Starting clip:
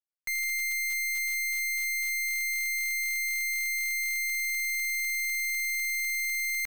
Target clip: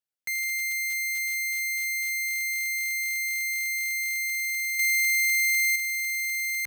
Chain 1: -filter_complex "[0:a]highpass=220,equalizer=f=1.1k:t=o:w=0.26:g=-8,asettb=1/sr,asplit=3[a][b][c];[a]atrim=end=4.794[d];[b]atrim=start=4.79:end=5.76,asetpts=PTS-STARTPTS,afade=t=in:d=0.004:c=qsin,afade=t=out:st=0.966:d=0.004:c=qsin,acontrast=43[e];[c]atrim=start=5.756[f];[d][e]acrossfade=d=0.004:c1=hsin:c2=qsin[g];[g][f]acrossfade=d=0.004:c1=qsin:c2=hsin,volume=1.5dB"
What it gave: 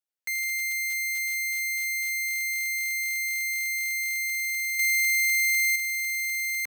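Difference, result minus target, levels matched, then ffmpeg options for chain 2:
125 Hz band -8.0 dB
-filter_complex "[0:a]highpass=76,equalizer=f=1.1k:t=o:w=0.26:g=-8,asettb=1/sr,asplit=3[a][b][c];[a]atrim=end=4.794[d];[b]atrim=start=4.79:end=5.76,asetpts=PTS-STARTPTS,afade=t=in:d=0.004:c=qsin,afade=t=out:st=0.966:d=0.004:c=qsin,acontrast=43[e];[c]atrim=start=5.756[f];[d][e]acrossfade=d=0.004:c1=hsin:c2=qsin[g];[g][f]acrossfade=d=0.004:c1=qsin:c2=hsin,volume=1.5dB"

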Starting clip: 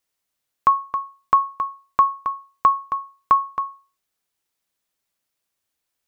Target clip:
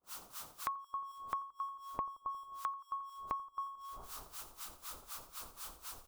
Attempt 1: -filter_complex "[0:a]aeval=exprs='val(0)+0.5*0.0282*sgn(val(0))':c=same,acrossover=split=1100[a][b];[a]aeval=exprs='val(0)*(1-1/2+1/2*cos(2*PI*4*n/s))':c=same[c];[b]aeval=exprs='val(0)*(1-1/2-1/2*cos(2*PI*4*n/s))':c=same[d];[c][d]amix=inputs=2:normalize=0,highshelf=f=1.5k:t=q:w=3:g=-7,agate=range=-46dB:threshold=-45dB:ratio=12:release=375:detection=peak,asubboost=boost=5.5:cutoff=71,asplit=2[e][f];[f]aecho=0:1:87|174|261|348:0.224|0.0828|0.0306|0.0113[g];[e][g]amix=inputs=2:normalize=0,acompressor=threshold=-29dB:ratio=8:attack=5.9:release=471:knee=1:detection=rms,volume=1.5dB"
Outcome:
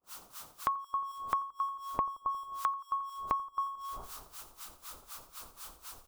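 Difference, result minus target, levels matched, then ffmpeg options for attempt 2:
compressor: peak gain reduction -7 dB
-filter_complex "[0:a]aeval=exprs='val(0)+0.5*0.0282*sgn(val(0))':c=same,acrossover=split=1100[a][b];[a]aeval=exprs='val(0)*(1-1/2+1/2*cos(2*PI*4*n/s))':c=same[c];[b]aeval=exprs='val(0)*(1-1/2-1/2*cos(2*PI*4*n/s))':c=same[d];[c][d]amix=inputs=2:normalize=0,highshelf=f=1.5k:t=q:w=3:g=-7,agate=range=-46dB:threshold=-45dB:ratio=12:release=375:detection=peak,asubboost=boost=5.5:cutoff=71,asplit=2[e][f];[f]aecho=0:1:87|174|261|348:0.224|0.0828|0.0306|0.0113[g];[e][g]amix=inputs=2:normalize=0,acompressor=threshold=-37dB:ratio=8:attack=5.9:release=471:knee=1:detection=rms,volume=1.5dB"

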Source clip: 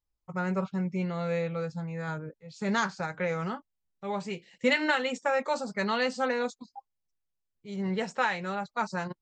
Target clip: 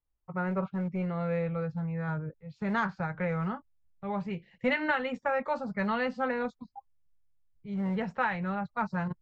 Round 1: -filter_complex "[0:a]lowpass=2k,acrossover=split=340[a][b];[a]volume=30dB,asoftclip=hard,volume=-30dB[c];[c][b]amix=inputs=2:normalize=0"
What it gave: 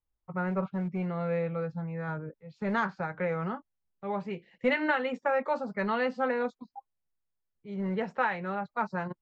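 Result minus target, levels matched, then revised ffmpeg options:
125 Hz band -2.5 dB
-filter_complex "[0:a]lowpass=2k,asubboost=boost=6.5:cutoff=130,acrossover=split=340[a][b];[a]volume=30dB,asoftclip=hard,volume=-30dB[c];[c][b]amix=inputs=2:normalize=0"

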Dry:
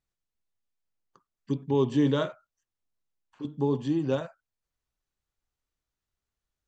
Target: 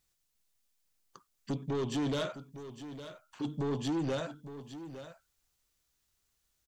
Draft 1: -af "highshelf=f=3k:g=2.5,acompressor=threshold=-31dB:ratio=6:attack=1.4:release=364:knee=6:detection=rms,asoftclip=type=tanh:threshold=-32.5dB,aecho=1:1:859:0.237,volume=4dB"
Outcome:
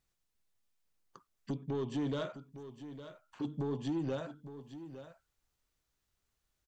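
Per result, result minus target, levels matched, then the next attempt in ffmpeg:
8000 Hz band -8.5 dB; compressor: peak gain reduction +5.5 dB
-af "highshelf=f=3k:g=11.5,acompressor=threshold=-31dB:ratio=6:attack=1.4:release=364:knee=6:detection=rms,asoftclip=type=tanh:threshold=-32.5dB,aecho=1:1:859:0.237,volume=4dB"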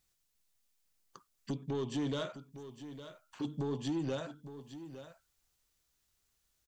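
compressor: peak gain reduction +6 dB
-af "highshelf=f=3k:g=11.5,acompressor=threshold=-24dB:ratio=6:attack=1.4:release=364:knee=6:detection=rms,asoftclip=type=tanh:threshold=-32.5dB,aecho=1:1:859:0.237,volume=4dB"

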